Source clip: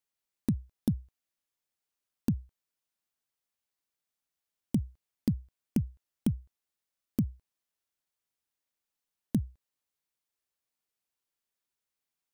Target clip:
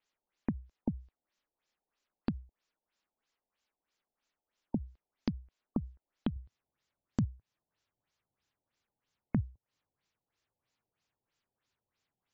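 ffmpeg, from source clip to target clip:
ffmpeg -i in.wav -af "asetnsamples=nb_out_samples=441:pad=0,asendcmd='6.36 equalizer g 7.5',equalizer=frequency=110:width=1.3:gain=-10,acompressor=threshold=-43dB:ratio=2.5,afftfilt=real='re*lt(b*sr/1024,890*pow(7800/890,0.5+0.5*sin(2*PI*3.1*pts/sr)))':imag='im*lt(b*sr/1024,890*pow(7800/890,0.5+0.5*sin(2*PI*3.1*pts/sr)))':win_size=1024:overlap=0.75,volume=8dB" out.wav

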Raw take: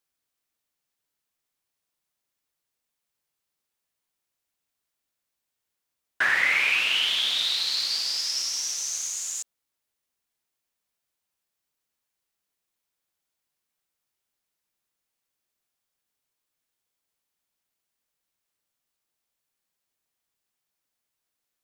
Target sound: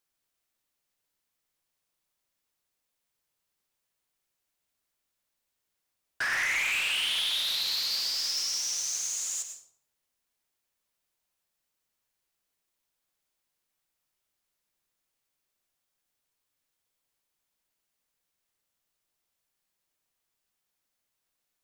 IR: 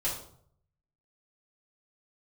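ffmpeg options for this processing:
-filter_complex "[0:a]asettb=1/sr,asplit=3[link_01][link_02][link_03];[link_01]atrim=end=6.224[link_04];[link_02]atrim=start=6.22:end=7.51,asetpts=PTS-STARTPTS,afade=type=in:duration=0.004:curve=qsin,afade=type=out:start_time=1.286:duration=0.004:curve=qsin,highpass=610[link_05];[link_03]atrim=start=7.506[link_06];[link_04][link_05]acrossfade=duration=0.004:curve1=hsin:curve2=qsin[link_07];[link_07][link_06]acrossfade=duration=0.004:curve1=qsin:curve2=hsin,asoftclip=type=tanh:threshold=-26.5dB,asplit=2[link_08][link_09];[1:a]atrim=start_sample=2205,adelay=94[link_10];[link_09][link_10]afir=irnorm=-1:irlink=0,volume=-12.5dB[link_11];[link_08][link_11]amix=inputs=2:normalize=0"

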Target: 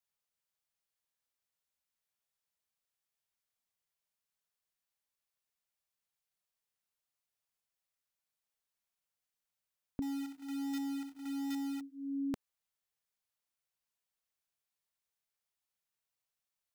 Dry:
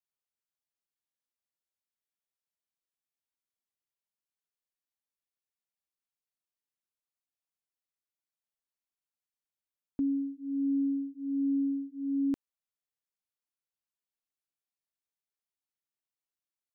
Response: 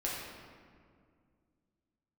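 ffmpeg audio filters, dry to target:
-filter_complex "[0:a]equalizer=frequency=300:width_type=o:width=0.52:gain=-13.5,asettb=1/sr,asplit=3[link_01][link_02][link_03];[link_01]atrim=end=10.024[link_04];[link_02]atrim=start=10.02:end=11.81,asetpts=PTS-STARTPTS,afade=type=in:duration=0.004:curve=qsin,afade=type=out:start_time=1.786:duration=0.004:curve=qsin,acrusher=bits=2:mode=log:mix=0:aa=0.000001[link_05];[link_03]atrim=start=11.806[link_06];[link_04][link_05]acrossfade=duration=0.004:curve1=hsin:curve2=qsin[link_07];[link_07][link_06]acrossfade=duration=0.004:curve1=qsin:curve2=hsin,volume=3.5dB"

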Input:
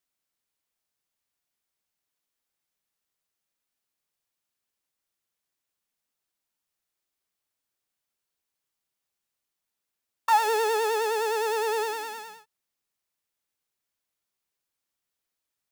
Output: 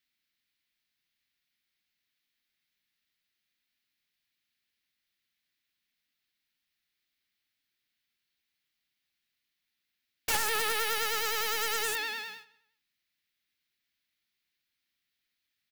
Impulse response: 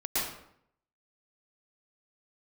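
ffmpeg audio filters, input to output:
-filter_complex "[0:a]equalizer=frequency=250:width_type=o:width=1:gain=4,equalizer=frequency=500:width_type=o:width=1:gain=-8,equalizer=frequency=1000:width_type=o:width=1:gain=-8,equalizer=frequency=2000:width_type=o:width=1:gain=9,equalizer=frequency=4000:width_type=o:width=1:gain=8,equalizer=frequency=8000:width_type=o:width=1:gain=-8,aeval=exprs='(mod(12.6*val(0)+1,2)-1)/12.6':channel_layout=same,asplit=2[link_01][link_02];[link_02]adelay=178,lowpass=frequency=5000:poles=1,volume=-21dB,asplit=2[link_03][link_04];[link_04]adelay=178,lowpass=frequency=5000:poles=1,volume=0.28[link_05];[link_01][link_03][link_05]amix=inputs=3:normalize=0"

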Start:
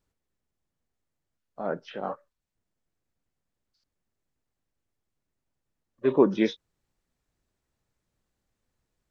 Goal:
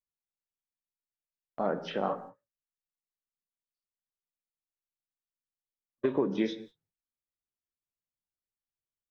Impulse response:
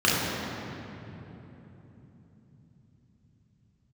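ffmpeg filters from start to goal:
-filter_complex "[0:a]agate=range=-31dB:threshold=-52dB:ratio=16:detection=peak,acompressor=threshold=-29dB:ratio=12,asplit=2[link_01][link_02];[1:a]atrim=start_sample=2205,afade=type=out:start_time=0.25:duration=0.01,atrim=end_sample=11466[link_03];[link_02][link_03]afir=irnorm=-1:irlink=0,volume=-27.5dB[link_04];[link_01][link_04]amix=inputs=2:normalize=0,volume=4dB"

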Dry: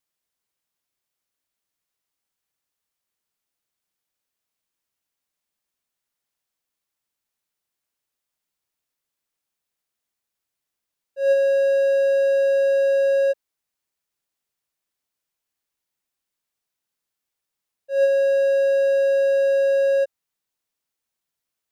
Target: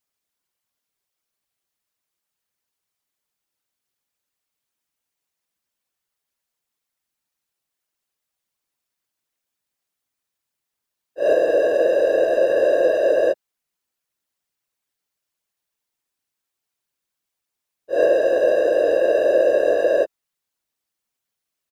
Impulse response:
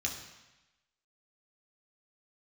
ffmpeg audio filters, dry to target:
-filter_complex "[0:a]afftfilt=real='hypot(re,im)*cos(2*PI*random(0))':imag='hypot(re,im)*sin(2*PI*random(1))':win_size=512:overlap=0.75,asplit=2[link_01][link_02];[link_02]asetrate=29433,aresample=44100,atempo=1.49831,volume=-14dB[link_03];[link_01][link_03]amix=inputs=2:normalize=0,volume=7dB"

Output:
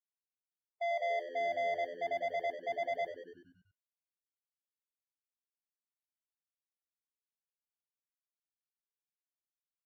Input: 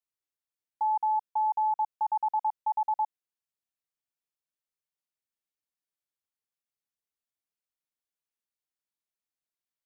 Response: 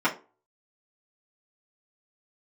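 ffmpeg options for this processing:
-filter_complex "[0:a]agate=range=-35dB:threshold=-29dB:ratio=16:detection=peak,highpass=560,asetrate=35002,aresample=44100,atempo=1.25992,aemphasis=mode=production:type=bsi,asoftclip=type=tanh:threshold=-34dB,asplit=8[link_01][link_02][link_03][link_04][link_05][link_06][link_07][link_08];[link_02]adelay=95,afreqshift=-84,volume=-10dB[link_09];[link_03]adelay=190,afreqshift=-168,volume=-14.6dB[link_10];[link_04]adelay=285,afreqshift=-252,volume=-19.2dB[link_11];[link_05]adelay=380,afreqshift=-336,volume=-23.7dB[link_12];[link_06]adelay=475,afreqshift=-420,volume=-28.3dB[link_13];[link_07]adelay=570,afreqshift=-504,volume=-32.9dB[link_14];[link_08]adelay=665,afreqshift=-588,volume=-37.5dB[link_15];[link_01][link_09][link_10][link_11][link_12][link_13][link_14][link_15]amix=inputs=8:normalize=0,asplit=2[link_16][link_17];[1:a]atrim=start_sample=2205,afade=type=out:start_time=0.14:duration=0.01,atrim=end_sample=6615,asetrate=66150,aresample=44100[link_18];[link_17][link_18]afir=irnorm=-1:irlink=0,volume=-20dB[link_19];[link_16][link_19]amix=inputs=2:normalize=0" -ar 48000 -c:a aac -b:a 48k

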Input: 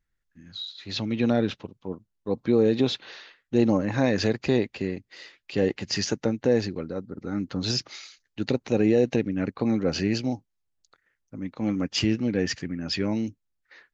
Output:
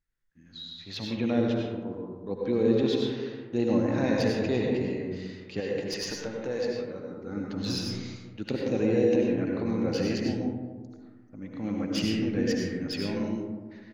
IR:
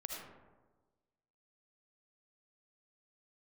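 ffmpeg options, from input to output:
-filter_complex "[0:a]asettb=1/sr,asplit=3[link_01][link_02][link_03];[link_01]atrim=end=5.604[link_04];[link_02]atrim=start=5.6:end=7.03,asetpts=PTS-STARTPTS,afade=type=in:duration=0.004:curve=qsin,afade=type=out:start_time=1.426:duration=0.004:curve=qsin,lowshelf=frequency=430:gain=-11[link_05];[link_03]atrim=start=7.026[link_06];[link_04][link_05]acrossfade=duration=0.004:curve1=hsin:curve2=qsin[link_07];[link_07][link_06]acrossfade=duration=0.004:curve1=qsin:curve2=hsin,acrossover=split=3300[link_08][link_09];[link_08]aecho=1:1:194|388:0.0944|0.0283[link_10];[link_09]aeval=exprs='clip(val(0),-1,0.0422)':channel_layout=same[link_11];[link_10][link_11]amix=inputs=2:normalize=0[link_12];[1:a]atrim=start_sample=2205,asetrate=34398,aresample=44100[link_13];[link_12][link_13]afir=irnorm=-1:irlink=0,volume=-3.5dB"

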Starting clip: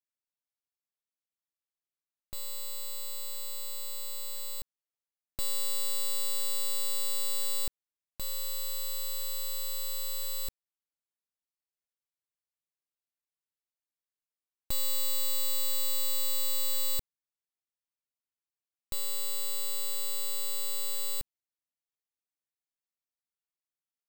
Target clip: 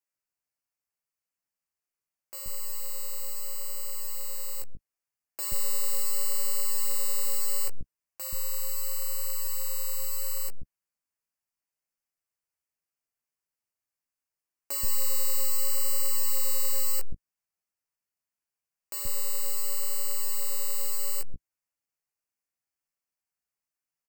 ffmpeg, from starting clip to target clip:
ffmpeg -i in.wav -filter_complex "[0:a]asuperstop=centerf=3600:order=4:qfactor=2.3,flanger=delay=9.9:depth=9.4:regen=-6:speed=0.74:shape=sinusoidal,acrossover=split=330[link_01][link_02];[link_01]adelay=130[link_03];[link_03][link_02]amix=inputs=2:normalize=0,volume=7dB" out.wav

